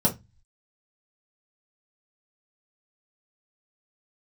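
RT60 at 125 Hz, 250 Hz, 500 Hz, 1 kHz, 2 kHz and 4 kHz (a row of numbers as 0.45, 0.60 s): 0.60, 0.30, 0.20, 0.20, 0.20, 0.20 s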